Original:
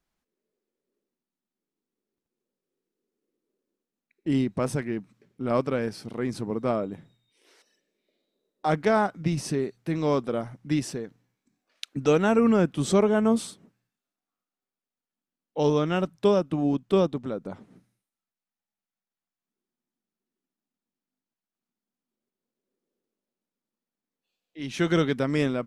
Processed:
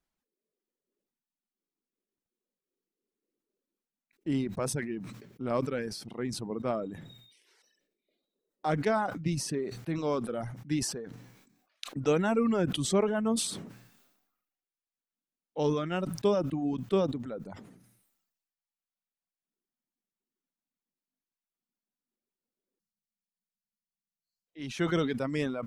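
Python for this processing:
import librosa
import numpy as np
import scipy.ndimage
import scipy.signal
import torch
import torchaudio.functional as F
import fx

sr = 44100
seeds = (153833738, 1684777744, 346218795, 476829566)

y = fx.dereverb_blind(x, sr, rt60_s=1.1)
y = fx.spec_erase(y, sr, start_s=22.8, length_s=1.67, low_hz=230.0, high_hz=4000.0)
y = fx.sustainer(y, sr, db_per_s=56.0)
y = y * librosa.db_to_amplitude(-5.0)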